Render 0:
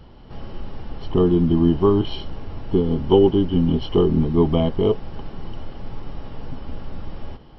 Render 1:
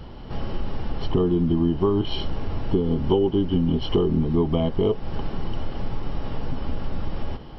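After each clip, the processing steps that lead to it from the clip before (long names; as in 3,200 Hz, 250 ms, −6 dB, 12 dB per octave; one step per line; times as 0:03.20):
downward compressor 4 to 1, threshold −25 dBFS, peak gain reduction 13 dB
level +6 dB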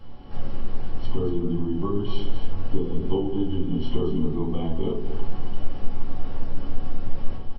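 tuned comb filter 370 Hz, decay 0.58 s, mix 70%
single-tap delay 234 ms −9.5 dB
rectangular room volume 190 cubic metres, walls furnished, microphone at 2.2 metres
level −1.5 dB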